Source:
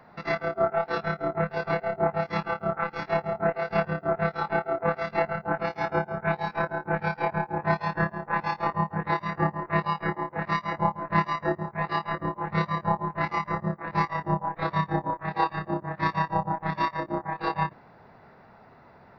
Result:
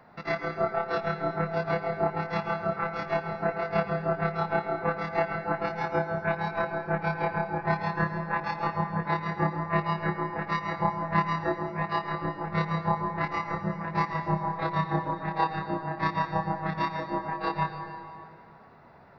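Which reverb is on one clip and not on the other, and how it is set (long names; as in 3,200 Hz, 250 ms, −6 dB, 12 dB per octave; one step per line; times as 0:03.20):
dense smooth reverb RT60 2.4 s, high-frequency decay 0.75×, pre-delay 80 ms, DRR 7 dB
level −2 dB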